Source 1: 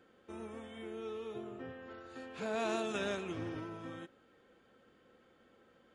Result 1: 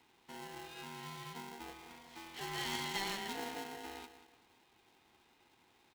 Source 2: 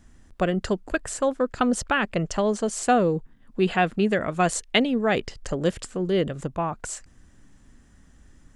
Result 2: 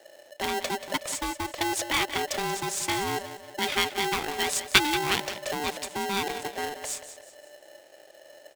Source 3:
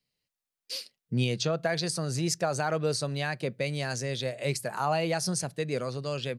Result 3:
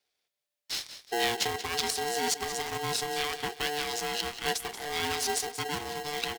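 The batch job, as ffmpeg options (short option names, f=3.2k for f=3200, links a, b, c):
-filter_complex "[0:a]acrossover=split=420[a][b];[a]alimiter=limit=-23.5dB:level=0:latency=1:release=16[c];[b]highpass=f=2.5k:t=q:w=1.8[d];[c][d]amix=inputs=2:normalize=0,aecho=1:1:183|366|549|732:0.251|0.0955|0.0363|0.0138,aeval=exprs='val(0)*sgn(sin(2*PI*590*n/s))':c=same"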